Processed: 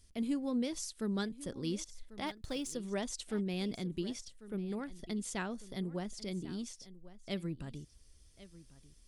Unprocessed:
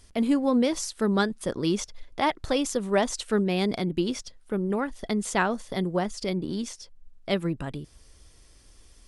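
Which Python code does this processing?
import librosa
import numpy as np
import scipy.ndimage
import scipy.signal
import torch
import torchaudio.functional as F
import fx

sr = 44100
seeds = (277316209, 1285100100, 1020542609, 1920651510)

y = fx.law_mismatch(x, sr, coded='A', at=(2.27, 2.73))
y = fx.peak_eq(y, sr, hz=920.0, db=-9.5, octaves=2.6)
y = y + 10.0 ** (-17.5 / 20.0) * np.pad(y, (int(1094 * sr / 1000.0), 0))[:len(y)]
y = y * 10.0 ** (-8.0 / 20.0)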